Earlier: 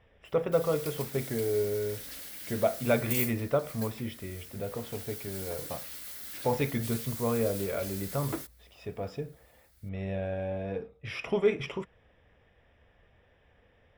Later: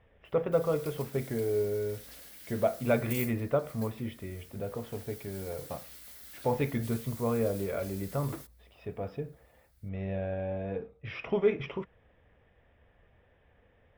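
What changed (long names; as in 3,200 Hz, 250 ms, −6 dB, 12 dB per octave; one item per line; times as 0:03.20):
speech: add high-frequency loss of the air 240 metres
background −7.0 dB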